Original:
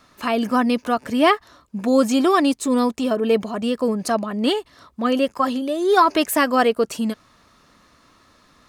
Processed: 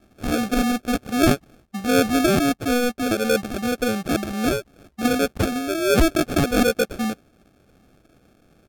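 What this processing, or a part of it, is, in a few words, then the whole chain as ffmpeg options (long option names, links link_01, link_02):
crushed at another speed: -af "asetrate=55125,aresample=44100,acrusher=samples=36:mix=1:aa=0.000001,asetrate=35280,aresample=44100,volume=-1.5dB"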